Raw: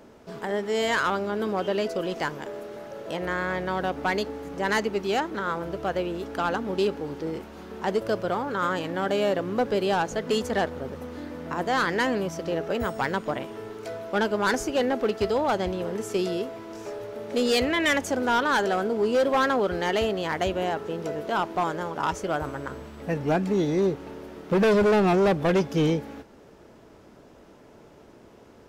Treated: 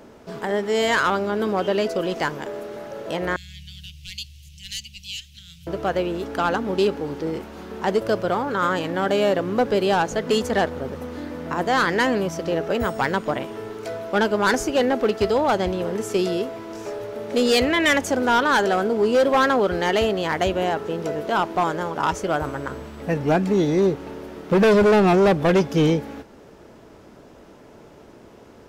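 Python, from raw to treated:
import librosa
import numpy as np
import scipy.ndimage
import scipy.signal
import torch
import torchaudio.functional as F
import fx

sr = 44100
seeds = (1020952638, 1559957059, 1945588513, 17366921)

y = fx.cheby1_bandstop(x, sr, low_hz=130.0, high_hz=2800.0, order=4, at=(3.36, 5.67))
y = y * librosa.db_to_amplitude(4.5)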